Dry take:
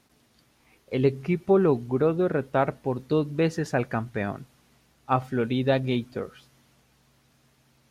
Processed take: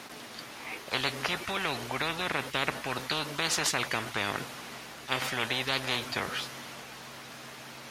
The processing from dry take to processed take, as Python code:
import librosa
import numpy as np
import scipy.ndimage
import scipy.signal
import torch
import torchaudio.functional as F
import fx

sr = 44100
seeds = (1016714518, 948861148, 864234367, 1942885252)

y = fx.highpass(x, sr, hz=710.0, slope=6)
y = fx.high_shelf(y, sr, hz=4900.0, db=-9.0)
y = fx.spectral_comp(y, sr, ratio=10.0)
y = F.gain(torch.from_numpy(y), 2.5).numpy()